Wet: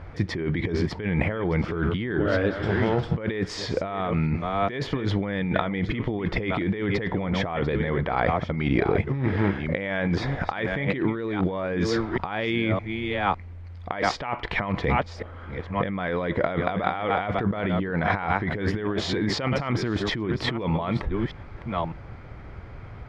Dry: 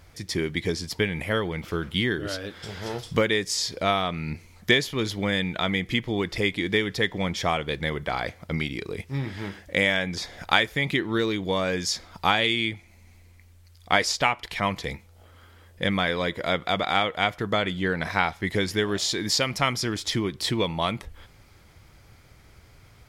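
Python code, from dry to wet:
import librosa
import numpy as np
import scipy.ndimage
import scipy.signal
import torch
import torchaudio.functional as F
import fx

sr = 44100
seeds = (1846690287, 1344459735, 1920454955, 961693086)

y = fx.reverse_delay(x, sr, ms=609, wet_db=-13)
y = scipy.signal.sosfilt(scipy.signal.butter(2, 1600.0, 'lowpass', fs=sr, output='sos'), y)
y = fx.over_compress(y, sr, threshold_db=-33.0, ratio=-1.0)
y = y * librosa.db_to_amplitude(7.5)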